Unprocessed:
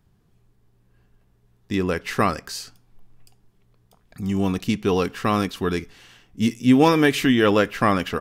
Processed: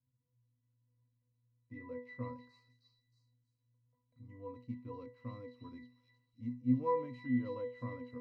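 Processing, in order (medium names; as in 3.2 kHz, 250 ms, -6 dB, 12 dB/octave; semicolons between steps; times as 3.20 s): pitch-class resonator B, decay 0.35 s; repeats whose band climbs or falls 314 ms, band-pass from 4.2 kHz, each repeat 0.7 oct, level -1 dB; trim -7 dB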